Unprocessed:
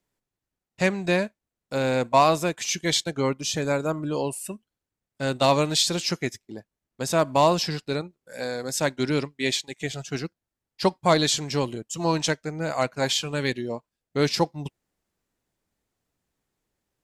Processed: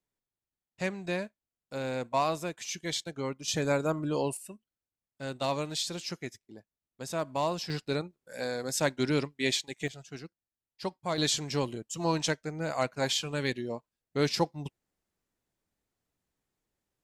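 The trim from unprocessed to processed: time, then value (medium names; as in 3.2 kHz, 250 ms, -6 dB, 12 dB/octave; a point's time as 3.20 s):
-10 dB
from 3.48 s -3 dB
from 4.37 s -11 dB
from 7.70 s -3.5 dB
from 9.88 s -13 dB
from 11.18 s -5 dB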